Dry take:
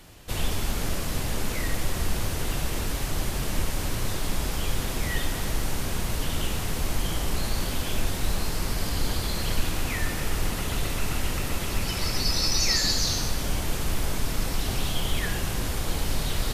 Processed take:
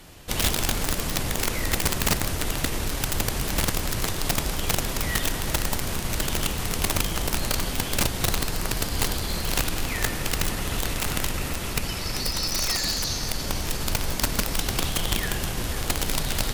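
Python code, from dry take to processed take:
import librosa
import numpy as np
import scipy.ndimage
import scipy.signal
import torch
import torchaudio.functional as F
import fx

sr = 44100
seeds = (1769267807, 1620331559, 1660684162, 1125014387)

y = fx.hum_notches(x, sr, base_hz=50, count=2)
y = fx.rider(y, sr, range_db=4, speed_s=2.0)
y = fx.echo_thinned(y, sr, ms=503, feedback_pct=64, hz=420.0, wet_db=-12.5)
y = (np.mod(10.0 ** (16.5 / 20.0) * y + 1.0, 2.0) - 1.0) / 10.0 ** (16.5 / 20.0)
y = fx.cheby_harmonics(y, sr, harmonics=(4,), levels_db=(-27,), full_scale_db=-16.5)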